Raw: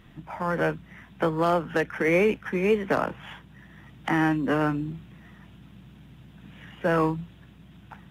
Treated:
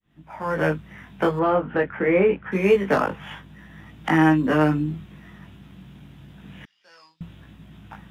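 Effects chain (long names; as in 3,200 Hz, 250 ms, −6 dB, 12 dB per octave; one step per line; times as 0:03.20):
fade in at the beginning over 0.70 s
chorus effect 0.25 Hz, delay 19 ms, depth 2.2 ms
0:01.39–0:02.52: high-frequency loss of the air 460 metres
0:06.65–0:07.21: resonant band-pass 4,900 Hz, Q 8.5
level +7 dB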